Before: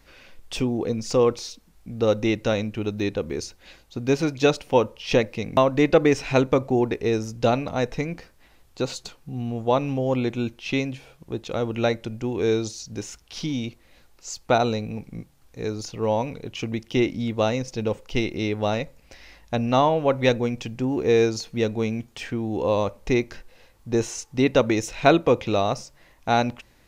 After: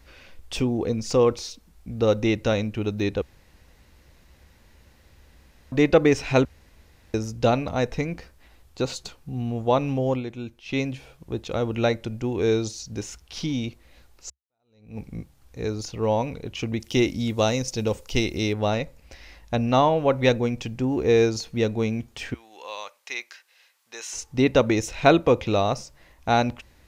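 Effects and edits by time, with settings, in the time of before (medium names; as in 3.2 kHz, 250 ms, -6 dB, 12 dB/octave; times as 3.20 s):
3.22–5.72 s: room tone
6.45–7.14 s: room tone
10.09–10.81 s: dip -8.5 dB, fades 0.14 s
14.30–14.99 s: fade in exponential
16.80–18.53 s: tone controls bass 0 dB, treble +10 dB
22.34–24.13 s: high-pass 1.5 kHz
whole clip: peaking EQ 67 Hz +10.5 dB 0.66 oct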